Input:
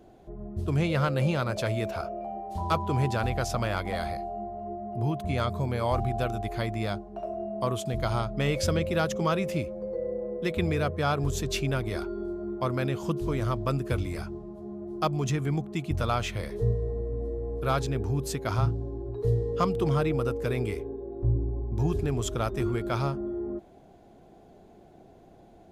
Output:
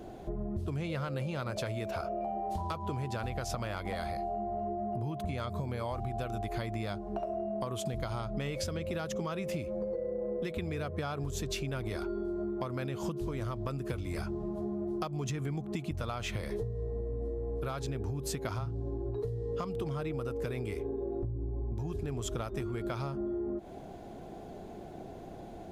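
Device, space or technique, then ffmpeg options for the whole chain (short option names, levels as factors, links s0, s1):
serial compression, peaks first: -af "acompressor=threshold=0.0178:ratio=6,acompressor=threshold=0.01:ratio=6,volume=2.51"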